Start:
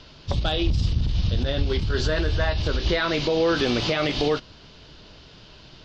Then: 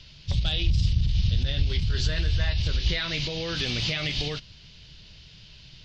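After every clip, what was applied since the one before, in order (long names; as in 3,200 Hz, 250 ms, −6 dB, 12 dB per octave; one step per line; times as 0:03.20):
flat-topped bell 590 Hz −13.5 dB 3 octaves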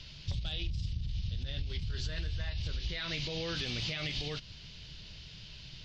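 downward compressor 6 to 1, threshold −33 dBFS, peak gain reduction 15 dB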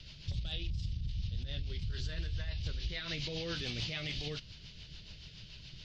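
rotating-speaker cabinet horn 7 Hz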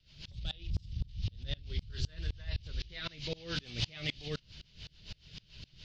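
tremolo with a ramp in dB swelling 3.9 Hz, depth 29 dB
level +7.5 dB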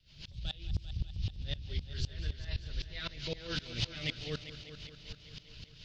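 echo machine with several playback heads 198 ms, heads first and second, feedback 60%, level −15 dB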